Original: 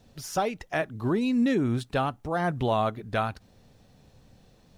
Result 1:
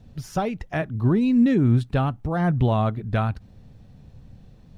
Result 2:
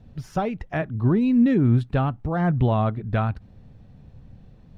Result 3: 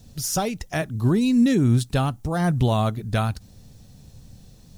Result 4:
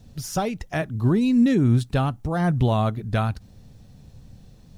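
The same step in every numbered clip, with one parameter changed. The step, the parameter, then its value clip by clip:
tone controls, treble: -6 dB, -15 dB, +14 dB, +5 dB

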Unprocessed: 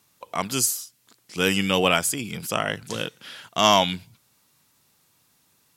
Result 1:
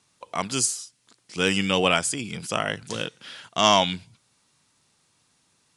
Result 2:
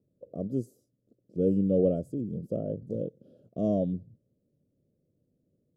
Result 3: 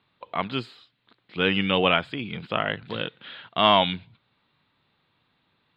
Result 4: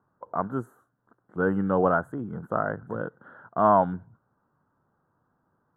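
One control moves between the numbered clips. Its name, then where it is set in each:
elliptic low-pass, frequency: 10 kHz, 570 Hz, 3.9 kHz, 1.5 kHz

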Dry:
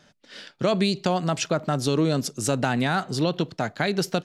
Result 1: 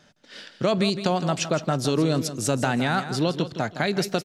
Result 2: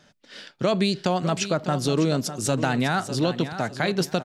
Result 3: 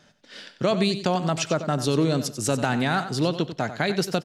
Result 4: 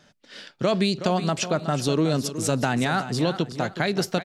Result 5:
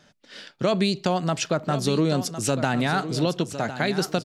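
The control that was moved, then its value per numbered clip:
feedback delay, time: 163 ms, 602 ms, 93 ms, 370 ms, 1057 ms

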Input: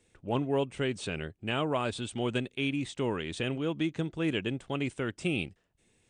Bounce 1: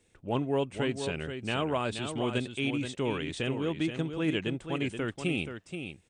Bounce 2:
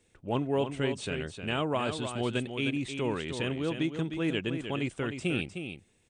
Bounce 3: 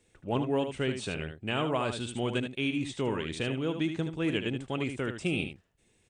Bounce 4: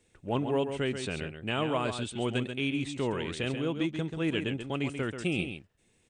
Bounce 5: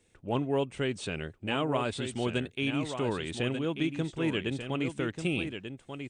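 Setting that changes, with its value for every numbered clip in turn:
delay, time: 478 ms, 308 ms, 76 ms, 135 ms, 1189 ms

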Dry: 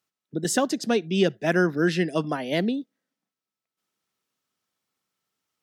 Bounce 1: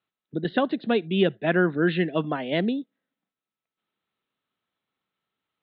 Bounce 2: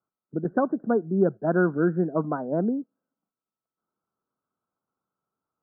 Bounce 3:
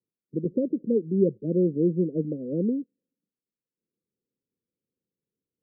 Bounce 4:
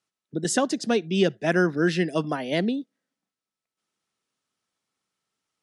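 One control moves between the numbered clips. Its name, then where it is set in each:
steep low-pass, frequency: 4 kHz, 1.5 kHz, 540 Hz, 11 kHz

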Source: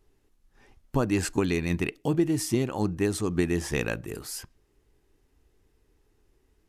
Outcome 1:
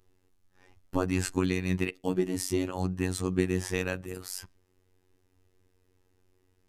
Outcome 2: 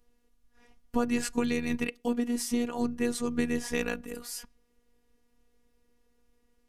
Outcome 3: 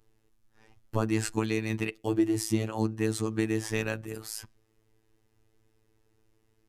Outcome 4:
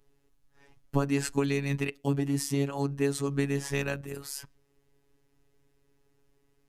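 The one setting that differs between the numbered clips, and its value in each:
robot voice, frequency: 92 Hz, 240 Hz, 110 Hz, 140 Hz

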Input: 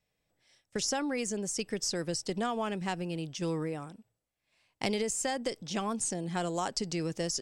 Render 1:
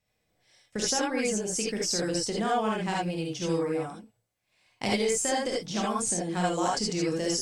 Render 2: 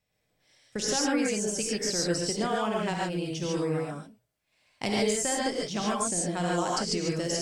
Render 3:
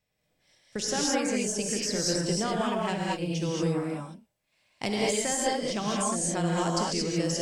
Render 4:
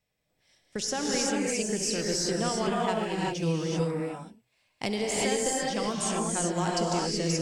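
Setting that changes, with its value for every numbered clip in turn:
gated-style reverb, gate: 100 ms, 170 ms, 250 ms, 410 ms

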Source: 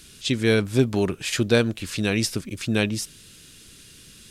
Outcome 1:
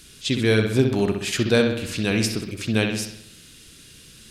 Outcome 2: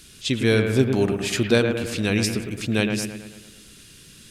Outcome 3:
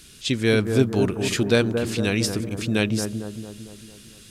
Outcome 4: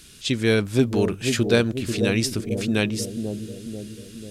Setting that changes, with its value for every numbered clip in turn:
bucket-brigade echo, time: 64 ms, 109 ms, 226 ms, 490 ms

